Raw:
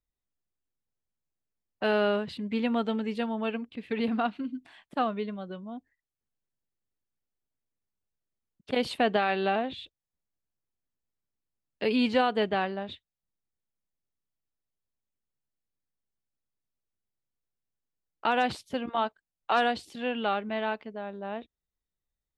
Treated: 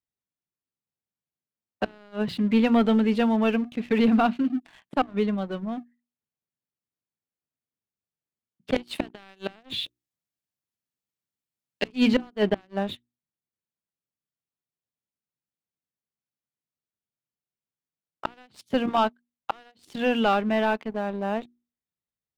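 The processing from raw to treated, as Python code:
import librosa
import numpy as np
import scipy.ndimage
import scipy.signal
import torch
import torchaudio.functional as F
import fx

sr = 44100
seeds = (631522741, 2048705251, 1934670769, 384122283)

y = fx.high_shelf(x, sr, hz=2100.0, db=8.5, at=(8.76, 11.88))
y = fx.gate_flip(y, sr, shuts_db=-16.0, range_db=-29)
y = scipy.signal.sosfilt(scipy.signal.butter(2, 130.0, 'highpass', fs=sr, output='sos'), y)
y = fx.hum_notches(y, sr, base_hz=60, count=6)
y = fx.leveller(y, sr, passes=2)
y = fx.bass_treble(y, sr, bass_db=6, treble_db=-3)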